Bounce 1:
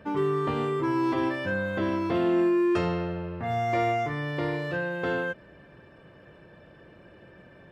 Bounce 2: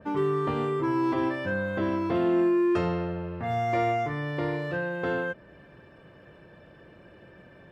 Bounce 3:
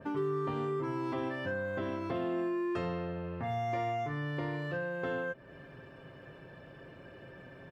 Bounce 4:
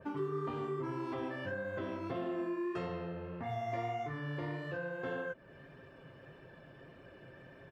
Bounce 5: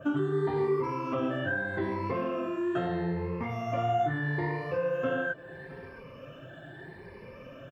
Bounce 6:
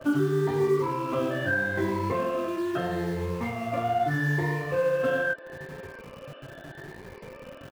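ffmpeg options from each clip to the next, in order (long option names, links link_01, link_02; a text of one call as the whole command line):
ffmpeg -i in.wav -af "adynamicequalizer=threshold=0.00631:dfrequency=2000:dqfactor=0.7:tfrequency=2000:tqfactor=0.7:attack=5:release=100:ratio=0.375:range=2:mode=cutabove:tftype=highshelf" out.wav
ffmpeg -i in.wav -af "aecho=1:1:7.5:0.4,acompressor=threshold=-38dB:ratio=2" out.wav
ffmpeg -i in.wav -af "flanger=delay=1.5:depth=7.9:regen=-36:speed=1.7:shape=triangular" out.wav
ffmpeg -i in.wav -filter_complex "[0:a]afftfilt=real='re*pow(10,15/40*sin(2*PI*(0.87*log(max(b,1)*sr/1024/100)/log(2)-(0.78)*(pts-256)/sr)))':imag='im*pow(10,15/40*sin(2*PI*(0.87*log(max(b,1)*sr/1024/100)/log(2)-(0.78)*(pts-256)/sr)))':win_size=1024:overlap=0.75,acrossover=split=2900[link_01][link_02];[link_02]alimiter=level_in=33.5dB:limit=-24dB:level=0:latency=1:release=147,volume=-33.5dB[link_03];[link_01][link_03]amix=inputs=2:normalize=0,aecho=1:1:664:0.1,volume=6dB" out.wav
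ffmpeg -i in.wav -filter_complex "[0:a]asplit=2[link_01][link_02];[link_02]adelay=21,volume=-6dB[link_03];[link_01][link_03]amix=inputs=2:normalize=0,aresample=11025,aresample=44100,acrossover=split=300|2000[link_04][link_05][link_06];[link_04]acrusher=bits=7:mix=0:aa=0.000001[link_07];[link_07][link_05][link_06]amix=inputs=3:normalize=0,volume=2dB" out.wav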